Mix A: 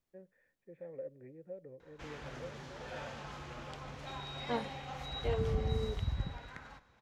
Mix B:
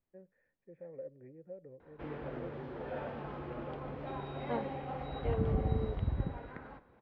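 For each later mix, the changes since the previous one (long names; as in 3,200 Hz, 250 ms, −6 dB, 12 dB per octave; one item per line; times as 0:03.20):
background: add parametric band 370 Hz +11 dB 2 octaves
master: add high-frequency loss of the air 450 metres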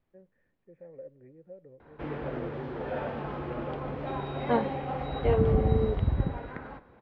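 second voice +11.0 dB
background +7.0 dB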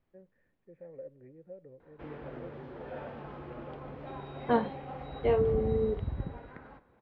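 background −8.5 dB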